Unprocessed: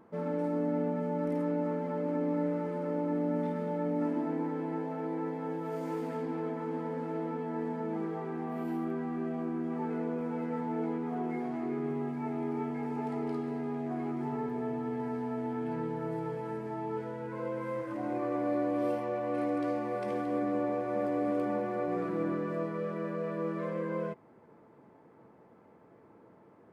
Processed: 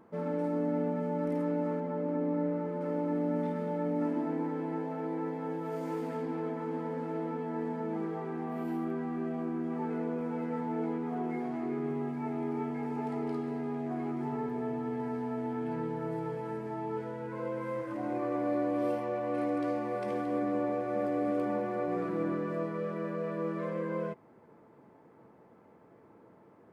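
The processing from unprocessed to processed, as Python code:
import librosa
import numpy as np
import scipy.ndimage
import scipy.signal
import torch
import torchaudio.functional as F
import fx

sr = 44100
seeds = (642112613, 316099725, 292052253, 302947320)

y = fx.high_shelf(x, sr, hz=2300.0, db=-8.0, at=(1.8, 2.81))
y = fx.notch(y, sr, hz=970.0, q=12.0, at=(20.71, 21.38))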